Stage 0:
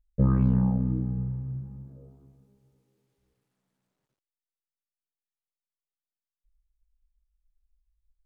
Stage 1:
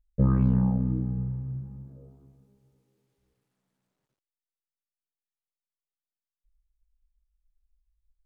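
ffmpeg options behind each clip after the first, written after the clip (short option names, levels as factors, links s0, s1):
-af anull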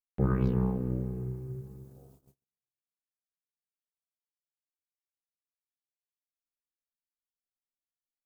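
-af "tremolo=f=250:d=0.75,agate=range=0.01:threshold=0.00158:ratio=16:detection=peak,crystalizer=i=8.5:c=0,volume=0.794"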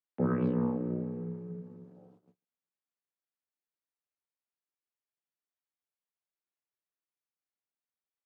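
-af "afreqshift=44,highpass=170,lowpass=2500"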